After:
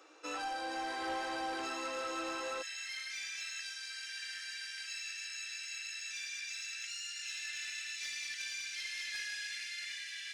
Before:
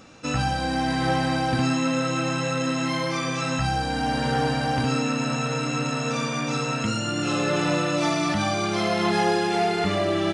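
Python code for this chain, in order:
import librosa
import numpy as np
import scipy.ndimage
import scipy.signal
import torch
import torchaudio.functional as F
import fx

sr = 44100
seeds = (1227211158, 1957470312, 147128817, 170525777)

y = fx.cheby_ripple_highpass(x, sr, hz=fx.steps((0.0, 300.0), (2.61, 1600.0)), ripple_db=3)
y = 10.0 ** (-24.5 / 20.0) * np.tanh(y / 10.0 ** (-24.5 / 20.0))
y = fx.echo_wet_highpass(y, sr, ms=465, feedback_pct=80, hz=3300.0, wet_db=-8.5)
y = F.gain(torch.from_numpy(y), -8.0).numpy()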